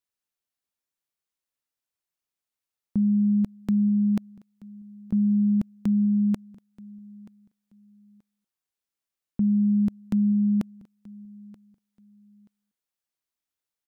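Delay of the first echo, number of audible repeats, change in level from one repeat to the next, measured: 930 ms, 2, -12.5 dB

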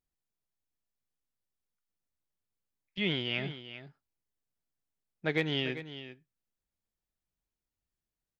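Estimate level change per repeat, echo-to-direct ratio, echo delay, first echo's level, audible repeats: no regular repeats, -12.5 dB, 395 ms, -12.5 dB, 1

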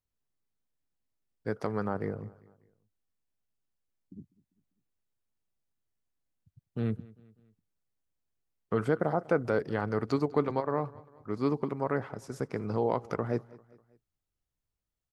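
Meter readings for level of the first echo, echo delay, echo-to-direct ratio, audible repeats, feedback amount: -22.0 dB, 198 ms, -21.0 dB, 3, 48%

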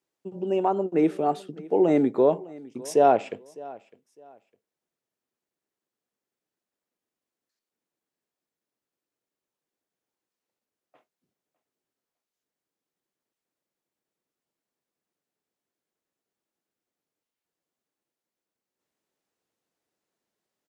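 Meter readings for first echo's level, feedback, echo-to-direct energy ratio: -21.0 dB, 26%, -20.5 dB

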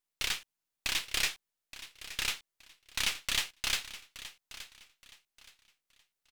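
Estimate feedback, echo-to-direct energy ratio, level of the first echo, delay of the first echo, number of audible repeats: 28%, -14.5 dB, -15.0 dB, 872 ms, 2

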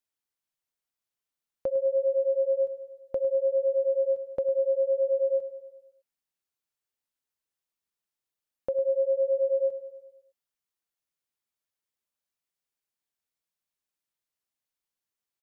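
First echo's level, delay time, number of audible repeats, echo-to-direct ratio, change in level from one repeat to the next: -14.5 dB, 103 ms, 5, -12.5 dB, -4.5 dB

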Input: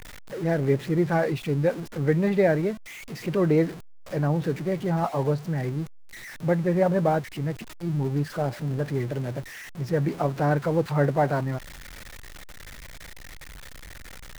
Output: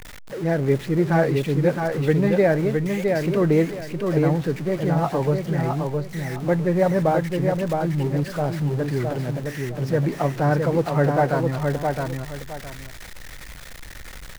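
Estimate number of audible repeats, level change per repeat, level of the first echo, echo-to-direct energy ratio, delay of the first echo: 2, -11.5 dB, -4.0 dB, -3.5 dB, 664 ms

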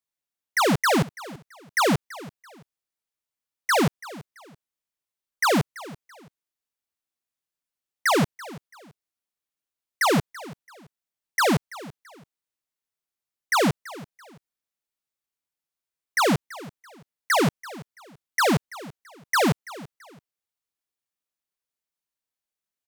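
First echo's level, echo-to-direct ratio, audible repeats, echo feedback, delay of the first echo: -18.5 dB, -18.0 dB, 2, 29%, 334 ms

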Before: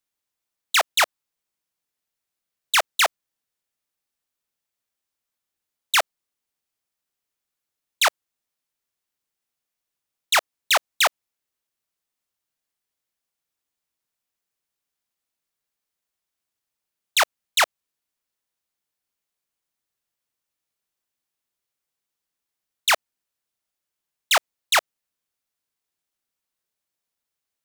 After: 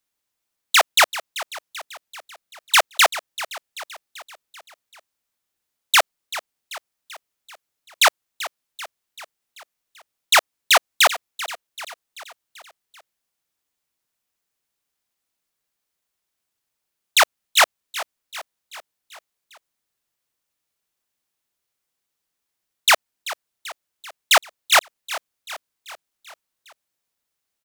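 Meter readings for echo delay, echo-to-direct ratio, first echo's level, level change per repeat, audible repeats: 387 ms, -13.5 dB, -15.0 dB, -5.0 dB, 4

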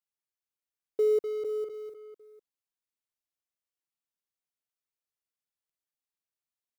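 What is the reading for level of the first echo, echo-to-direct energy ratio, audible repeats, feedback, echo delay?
-8.5 dB, -8.5 dB, 1, no regular repeats, 455 ms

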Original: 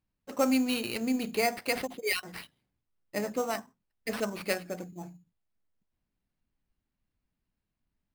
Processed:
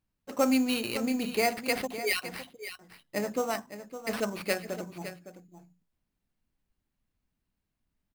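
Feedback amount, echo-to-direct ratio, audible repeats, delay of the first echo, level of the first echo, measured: no regular repeats, -12.0 dB, 1, 560 ms, -12.0 dB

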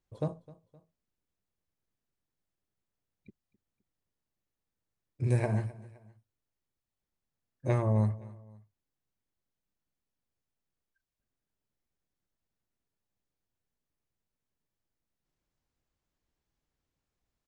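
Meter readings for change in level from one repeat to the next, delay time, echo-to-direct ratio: -7.0 dB, 259 ms, -19.5 dB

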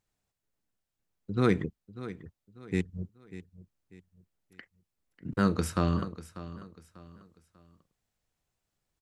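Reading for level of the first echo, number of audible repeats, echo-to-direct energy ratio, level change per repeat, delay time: -15.0 dB, 3, -14.5 dB, -9.0 dB, 593 ms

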